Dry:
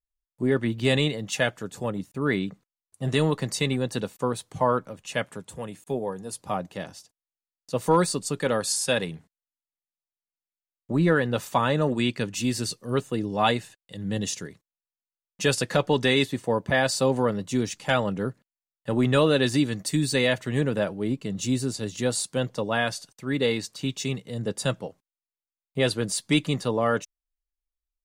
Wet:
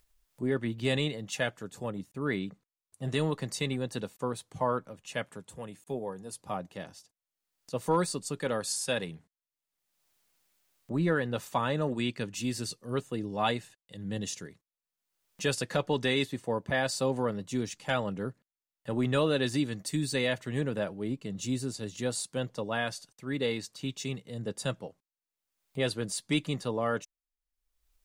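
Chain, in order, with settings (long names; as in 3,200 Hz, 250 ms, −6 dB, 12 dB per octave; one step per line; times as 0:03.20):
upward compression, threshold −43 dBFS
level −6.5 dB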